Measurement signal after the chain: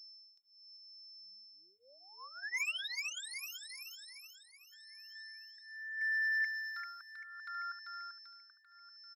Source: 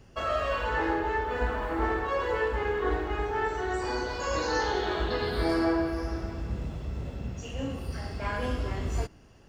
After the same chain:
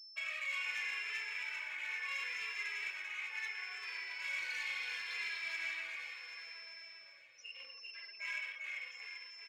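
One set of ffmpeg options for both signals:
-filter_complex "[0:a]afftfilt=real='re*gte(hypot(re,im),0.0126)':imag='im*gte(hypot(re,im),0.0126)':win_size=1024:overlap=0.75,aemphasis=mode=reproduction:type=cd,aecho=1:1:1.9:0.58,asoftclip=type=hard:threshold=-28dB,highpass=f=2.3k:t=q:w=9.3,asoftclip=type=tanh:threshold=-24.5dB,aeval=exprs='val(0)+0.00708*sin(2*PI*5300*n/s)':c=same,aecho=1:1:391|782|1173|1564|1955|2346|2737:0.562|0.292|0.152|0.0791|0.0411|0.0214|0.0111,asplit=2[a][b];[b]adelay=2.6,afreqshift=-0.73[c];[a][c]amix=inputs=2:normalize=1,volume=-6dB"

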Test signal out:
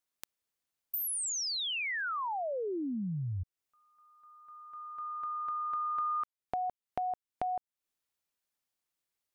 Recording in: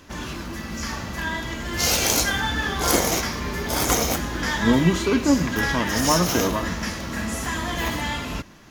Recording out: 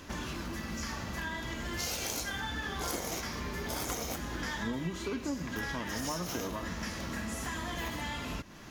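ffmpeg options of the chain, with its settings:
-af "acompressor=threshold=-36dB:ratio=4"

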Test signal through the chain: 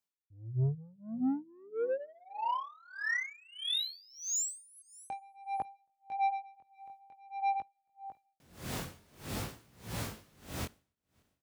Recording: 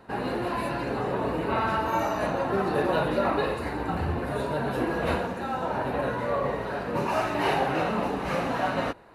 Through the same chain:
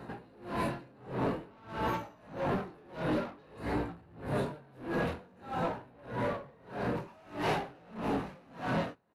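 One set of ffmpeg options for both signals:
-filter_complex "[0:a]highpass=90,lowshelf=f=270:g=9.5,asplit=2[a][b];[b]acompressor=threshold=-37dB:ratio=6,volume=2dB[c];[a][c]amix=inputs=2:normalize=0,flanger=delay=17:depth=6.7:speed=0.51,asoftclip=type=tanh:threshold=-25dB,asplit=2[d][e];[e]aecho=0:1:275|550|825:0.0794|0.0294|0.0109[f];[d][f]amix=inputs=2:normalize=0,aeval=exprs='val(0)*pow(10,-29*(0.5-0.5*cos(2*PI*1.6*n/s))/20)':c=same"

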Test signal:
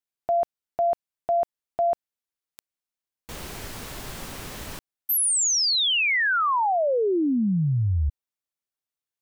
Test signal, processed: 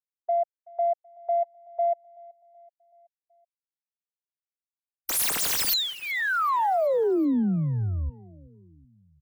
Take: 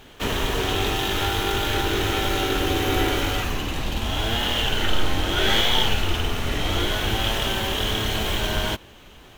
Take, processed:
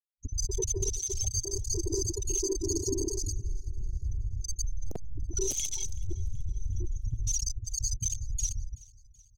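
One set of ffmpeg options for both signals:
-filter_complex "[0:a]highshelf=f=4.2k:t=q:w=3:g=14,afftfilt=real='re*gte(hypot(re,im),0.398)':imag='im*gte(hypot(re,im),0.398)':win_size=1024:overlap=0.75,adynamicequalizer=threshold=0.00398:dfrequency=110:dqfactor=7.8:tfrequency=110:tqfactor=7.8:attack=5:release=100:ratio=0.417:range=2:mode=boostabove:tftype=bell,aeval=exprs='(mod(4.22*val(0)+1,2)-1)/4.22':c=same,acrossover=split=220[a][b];[a]acompressor=threshold=-26dB:ratio=6:attack=0.81:release=92:knee=2.83:detection=peak[c];[c][b]amix=inputs=2:normalize=0,alimiter=limit=-19dB:level=0:latency=1:release=327,afwtdn=0.0126,aecho=1:1:378|756|1134|1512:0.0708|0.0375|0.0199|0.0105"

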